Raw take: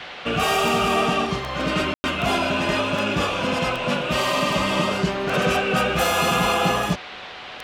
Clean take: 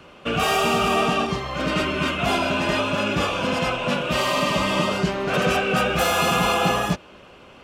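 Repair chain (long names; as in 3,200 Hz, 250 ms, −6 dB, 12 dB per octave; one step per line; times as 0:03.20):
click removal
notch filter 740 Hz, Q 30
ambience match 0:01.94–0:02.04
noise reduction from a noise print 9 dB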